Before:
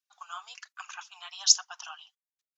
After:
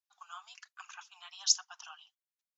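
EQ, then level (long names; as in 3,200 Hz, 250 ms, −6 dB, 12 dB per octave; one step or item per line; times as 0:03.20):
high-pass filter 640 Hz 24 dB per octave
−6.5 dB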